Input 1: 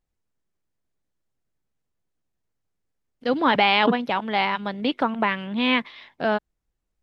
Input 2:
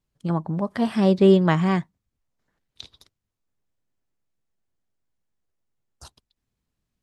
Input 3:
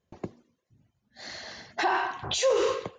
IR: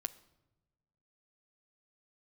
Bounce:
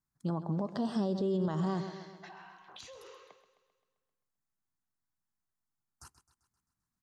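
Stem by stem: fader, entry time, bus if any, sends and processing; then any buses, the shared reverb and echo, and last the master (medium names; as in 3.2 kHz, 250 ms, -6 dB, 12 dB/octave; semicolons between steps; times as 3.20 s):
mute
-4.5 dB, 0.00 s, send -15 dB, echo send -14.5 dB, touch-sensitive phaser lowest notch 500 Hz, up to 2.3 kHz, full sweep at -25 dBFS
-13.5 dB, 0.45 s, no send, echo send -13 dB, frequency weighting A; compression 6:1, threshold -36 dBFS, peak gain reduction 13 dB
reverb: on, pre-delay 8 ms
echo: feedback delay 131 ms, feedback 56%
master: bass shelf 97 Hz -12 dB; peak limiter -24 dBFS, peak gain reduction 13.5 dB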